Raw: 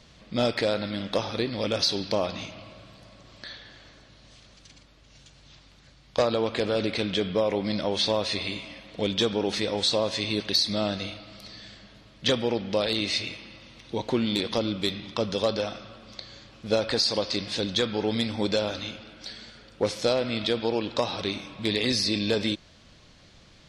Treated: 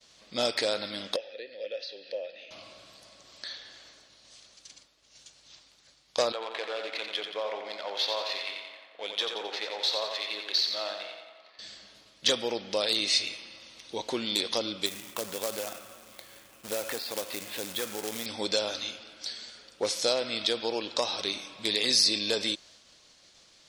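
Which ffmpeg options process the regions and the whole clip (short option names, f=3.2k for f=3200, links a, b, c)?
-filter_complex "[0:a]asettb=1/sr,asplit=3[a][b][c];[a]atrim=end=1.164[d];[b]atrim=start=1.16:end=2.51,asetpts=PTS-STARTPTS,afade=t=in:d=0.004:c=qsin,afade=t=out:st=1.346:d=0.004:c=qsin,asplit=3[e][f][g];[e]bandpass=f=530:t=q:w=8,volume=0dB[h];[f]bandpass=f=1.84k:t=q:w=8,volume=-6dB[i];[g]bandpass=f=2.48k:t=q:w=8,volume=-9dB[j];[h][i][j]amix=inputs=3:normalize=0,highshelf=f=6.3k:t=q:w=1.5:g=-12.5,acompressor=mode=upward:threshold=-39dB:ratio=2.5:attack=3.2:release=140:knee=2.83:detection=peak[k];[c]atrim=start=2.506[l];[d][k]acrossfade=d=0.004:c1=hsin:c2=qsin[m];[m][l]acrossfade=d=0.004:c1=qsin:c2=hsin,asettb=1/sr,asplit=3[n][o][p];[n]atrim=end=6.324[q];[o]atrim=start=6.32:end=11.59,asetpts=PTS-STARTPTS,afade=t=in:d=0.004:c=qsin,afade=t=out:st=5.266:d=0.004:c=qsin,adynamicsmooth=sensitivity=4.5:basefreq=1.9k,highpass=690,lowpass=3.2k,aecho=1:1:88|176|264|352|440|528|616:0.501|0.271|0.146|0.0789|0.0426|0.023|0.0124,atrim=end_sample=232407[r];[p]atrim=start=11.586[s];[q][r]acrossfade=d=0.004:c1=hsin:c2=qsin[t];[t][s]acrossfade=d=0.004:c1=qsin:c2=hsin,asettb=1/sr,asplit=3[u][v][w];[u]atrim=end=14.864[x];[v]atrim=start=14.86:end=18.26,asetpts=PTS-STARTPTS,afade=t=in:d=0.004:c=qsin,afade=t=out:st=3.396:d=0.004:c=qsin,lowpass=f=2.8k:w=0.5412,lowpass=f=2.8k:w=1.3066,acrusher=bits=2:mode=log:mix=0:aa=0.000001,acompressor=threshold=-28dB:ratio=2:attack=3.2:release=140:knee=1:detection=peak[y];[w]atrim=start=18.256[z];[x][y]acrossfade=d=0.004:c1=hsin:c2=qsin[aa];[aa][z]acrossfade=d=0.004:c1=qsin:c2=hsin,agate=range=-33dB:threshold=-50dB:ratio=3:detection=peak,bass=f=250:g=-14,treble=f=4k:g=11,volume=-3dB"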